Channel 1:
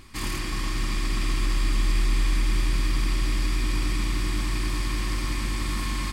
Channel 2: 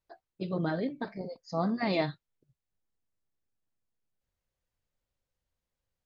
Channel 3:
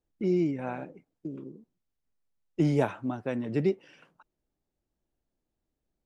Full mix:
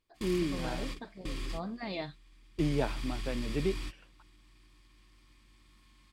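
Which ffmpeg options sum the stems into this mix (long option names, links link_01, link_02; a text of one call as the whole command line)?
ffmpeg -i stem1.wav -i stem2.wav -i stem3.wav -filter_complex "[0:a]alimiter=limit=-18dB:level=0:latency=1,volume=-12dB[link_01];[1:a]volume=-9.5dB[link_02];[2:a]volume=-5.5dB,asplit=2[link_03][link_04];[link_04]apad=whole_len=270017[link_05];[link_01][link_05]sidechaingate=range=-23dB:threshold=-51dB:ratio=16:detection=peak[link_06];[link_06][link_02][link_03]amix=inputs=3:normalize=0,equalizer=frequency=3300:width=1.5:gain=5.5" out.wav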